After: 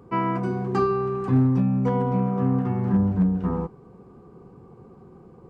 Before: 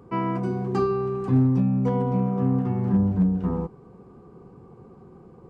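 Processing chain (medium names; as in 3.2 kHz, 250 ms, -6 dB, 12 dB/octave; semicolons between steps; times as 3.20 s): dynamic bell 1.5 kHz, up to +5 dB, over -41 dBFS, Q 0.84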